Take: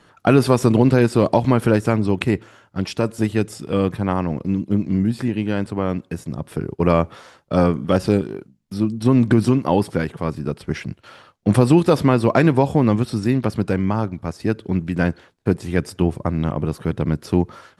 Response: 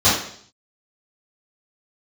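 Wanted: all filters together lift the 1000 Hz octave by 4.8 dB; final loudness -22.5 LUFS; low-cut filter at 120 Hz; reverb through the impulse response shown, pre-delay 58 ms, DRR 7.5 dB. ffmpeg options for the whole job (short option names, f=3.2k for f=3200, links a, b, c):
-filter_complex "[0:a]highpass=120,equalizer=f=1k:t=o:g=6,asplit=2[a][b];[1:a]atrim=start_sample=2205,adelay=58[c];[b][c]afir=irnorm=-1:irlink=0,volume=-29.5dB[d];[a][d]amix=inputs=2:normalize=0,volume=-4dB"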